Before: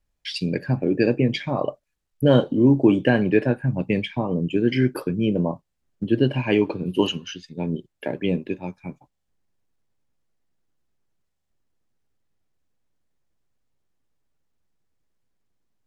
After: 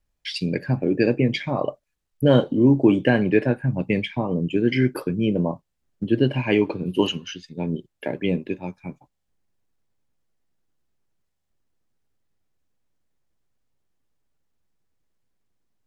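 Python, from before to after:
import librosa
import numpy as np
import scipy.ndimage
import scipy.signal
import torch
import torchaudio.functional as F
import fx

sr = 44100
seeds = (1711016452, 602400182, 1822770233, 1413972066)

y = fx.dynamic_eq(x, sr, hz=2100.0, q=7.7, threshold_db=-51.0, ratio=4.0, max_db=5)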